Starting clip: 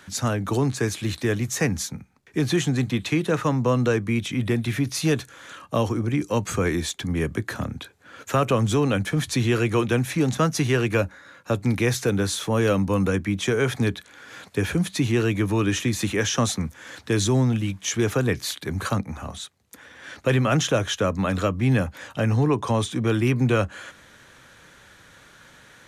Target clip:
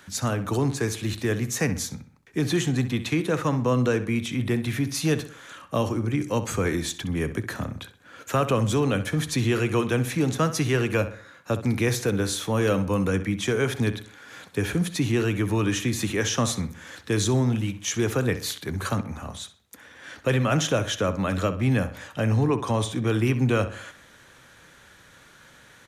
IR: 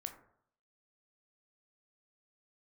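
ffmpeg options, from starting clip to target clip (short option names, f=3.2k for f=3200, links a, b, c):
-filter_complex "[0:a]highshelf=f=12k:g=5,asplit=2[a][b];[b]adelay=64,lowpass=f=3.8k:p=1,volume=-12dB,asplit=2[c][d];[d]adelay=64,lowpass=f=3.8k:p=1,volume=0.43,asplit=2[e][f];[f]adelay=64,lowpass=f=3.8k:p=1,volume=0.43,asplit=2[g][h];[h]adelay=64,lowpass=f=3.8k:p=1,volume=0.43[i];[a][c][e][g][i]amix=inputs=5:normalize=0,volume=-2dB"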